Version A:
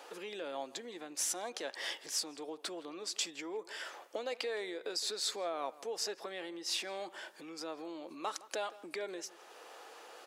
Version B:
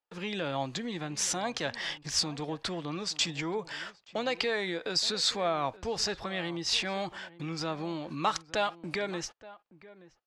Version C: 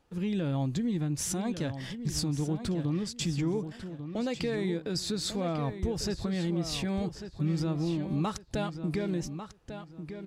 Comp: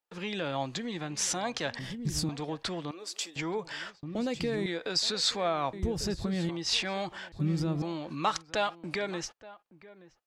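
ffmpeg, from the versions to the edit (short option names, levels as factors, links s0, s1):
-filter_complex "[2:a]asplit=4[s0][s1][s2][s3];[1:a]asplit=6[s4][s5][s6][s7][s8][s9];[s4]atrim=end=1.792[s10];[s0]atrim=start=1.788:end=2.292[s11];[s5]atrim=start=2.288:end=2.912[s12];[0:a]atrim=start=2.908:end=3.362[s13];[s6]atrim=start=3.358:end=4.032[s14];[s1]atrim=start=4.028:end=4.662[s15];[s7]atrim=start=4.658:end=5.732[s16];[s2]atrim=start=5.728:end=6.492[s17];[s8]atrim=start=6.488:end=7.322[s18];[s3]atrim=start=7.318:end=7.822[s19];[s9]atrim=start=7.818[s20];[s10][s11]acrossfade=d=0.004:c1=hsin:c2=hsin[s21];[s21][s12]acrossfade=d=0.004:c1=hsin:c2=hsin[s22];[s22][s13]acrossfade=d=0.004:c1=hsin:c2=hsin[s23];[s23][s14]acrossfade=d=0.004:c1=hsin:c2=hsin[s24];[s24][s15]acrossfade=d=0.004:c1=hsin:c2=hsin[s25];[s25][s16]acrossfade=d=0.004:c1=hsin:c2=hsin[s26];[s26][s17]acrossfade=d=0.004:c1=hsin:c2=hsin[s27];[s27][s18]acrossfade=d=0.004:c1=hsin:c2=hsin[s28];[s28][s19]acrossfade=d=0.004:c1=hsin:c2=hsin[s29];[s29][s20]acrossfade=d=0.004:c1=hsin:c2=hsin"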